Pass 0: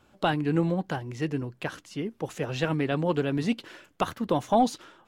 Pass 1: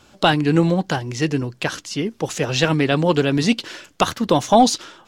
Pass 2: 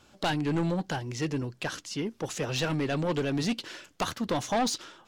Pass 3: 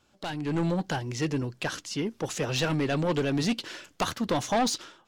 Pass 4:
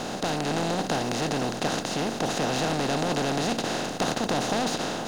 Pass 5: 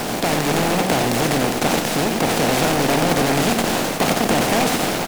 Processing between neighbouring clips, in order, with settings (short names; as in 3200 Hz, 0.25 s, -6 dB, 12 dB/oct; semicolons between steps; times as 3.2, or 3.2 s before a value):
bell 5500 Hz +10 dB 1.6 oct; gain +8.5 dB
soft clip -15 dBFS, distortion -9 dB; gain -7.5 dB
AGC gain up to 10 dB; gain -8 dB
per-bin compression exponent 0.2; gain -7.5 dB
bit-crush 6-bit; echo 92 ms -6 dB; noise-modulated delay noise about 1400 Hz, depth 0.095 ms; gain +7.5 dB